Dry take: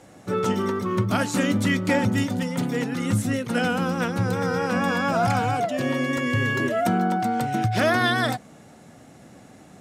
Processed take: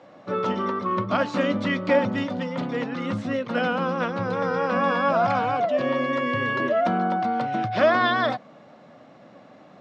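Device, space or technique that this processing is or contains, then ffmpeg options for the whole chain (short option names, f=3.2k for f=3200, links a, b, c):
kitchen radio: -af "highpass=170,equalizer=f=400:t=q:w=4:g=-3,equalizer=f=580:t=q:w=4:g=9,equalizer=f=1.1k:t=q:w=4:g=8,lowpass=f=4.5k:w=0.5412,lowpass=f=4.5k:w=1.3066,volume=-2dB"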